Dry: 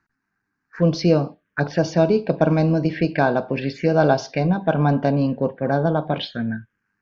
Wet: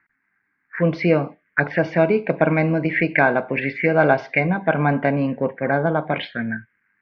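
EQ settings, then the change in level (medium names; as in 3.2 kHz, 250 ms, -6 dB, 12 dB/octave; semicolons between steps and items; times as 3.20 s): resonant low-pass 2.1 kHz, resonance Q 7; bass shelf 96 Hz -9.5 dB; 0.0 dB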